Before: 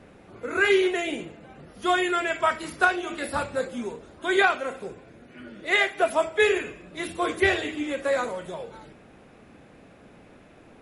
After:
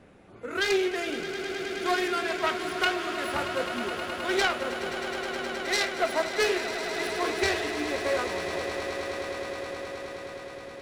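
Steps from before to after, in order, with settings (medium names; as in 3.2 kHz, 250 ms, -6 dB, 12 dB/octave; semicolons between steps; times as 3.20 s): self-modulated delay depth 0.21 ms; echo with a slow build-up 105 ms, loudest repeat 8, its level -13 dB; trim -4 dB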